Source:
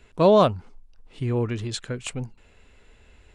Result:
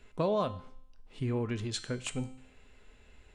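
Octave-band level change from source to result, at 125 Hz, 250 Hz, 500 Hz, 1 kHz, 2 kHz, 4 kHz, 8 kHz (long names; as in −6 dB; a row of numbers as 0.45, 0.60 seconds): −8.5, −9.0, −12.5, −12.5, −6.0, −7.0, −4.5 decibels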